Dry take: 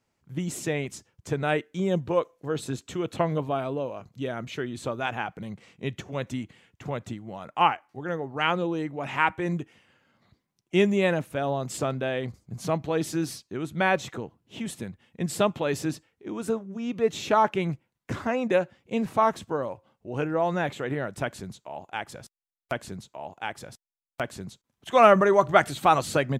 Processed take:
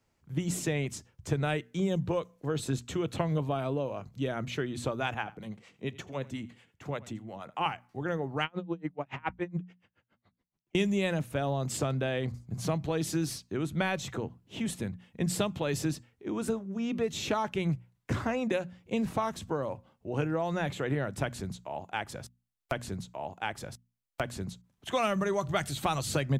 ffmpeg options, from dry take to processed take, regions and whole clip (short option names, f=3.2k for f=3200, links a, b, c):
-filter_complex "[0:a]asettb=1/sr,asplit=3[a][b][c];[a]atrim=end=5.144[d];[b]atrim=start=5.14:end=7.66,asetpts=PTS-STARTPTS,afade=t=in:d=0.004:c=qsin,afade=t=out:st=2.516:d=0.004:c=qsin,acrossover=split=480[e][f];[e]aeval=exprs='val(0)*(1-0.7/2+0.7/2*cos(2*PI*8.5*n/s))':c=same[g];[f]aeval=exprs='val(0)*(1-0.7/2-0.7/2*cos(2*PI*8.5*n/s))':c=same[h];[g][h]amix=inputs=2:normalize=0,lowshelf=f=120:g=-10,aecho=1:1:85:0.0891,atrim=end_sample=111132[i];[c]atrim=start=7.656[j];[d][i]acrossfade=d=0.004:c1=hsin:c2=qsin[k];[k][j]acrossfade=d=0.004:c1=qsin:c2=hsin,asettb=1/sr,asplit=3[l][m][n];[l]atrim=end=8.444[o];[m]atrim=start=8.44:end=10.75,asetpts=PTS-STARTPTS,afade=t=in:d=0.004:c=qsin,afade=t=out:st=2.306:d=0.004:c=qsin,lowpass=6.9k,highshelf=f=5.4k:g=-9.5,aeval=exprs='val(0)*pow(10,-39*(0.5-0.5*cos(2*PI*7.1*n/s))/20)':c=same[p];[n]atrim=start=10.746[q];[o][p]acrossfade=d=0.004:c1=hsin:c2=qsin[r];[r][q]acrossfade=d=0.004:c1=qsin:c2=hsin,lowshelf=f=100:g=9.5,bandreject=f=60:t=h:w=6,bandreject=f=120:t=h:w=6,bandreject=f=180:t=h:w=6,bandreject=f=240:t=h:w=6,acrossover=split=150|3000[s][t][u];[t]acompressor=threshold=-28dB:ratio=6[v];[s][v][u]amix=inputs=3:normalize=0"